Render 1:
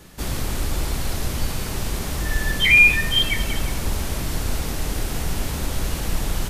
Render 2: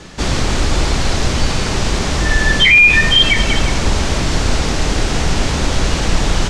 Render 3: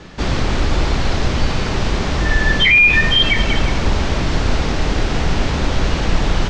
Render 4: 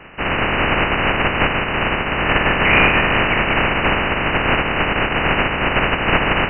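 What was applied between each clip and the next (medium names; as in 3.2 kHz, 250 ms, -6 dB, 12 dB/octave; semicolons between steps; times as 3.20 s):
low-pass 7.1 kHz 24 dB/octave; bass shelf 180 Hz -4 dB; loudness maximiser +13 dB; trim -1 dB
distance through air 120 m; trim -1 dB
spectral contrast reduction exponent 0.26; brick-wall FIR low-pass 3 kHz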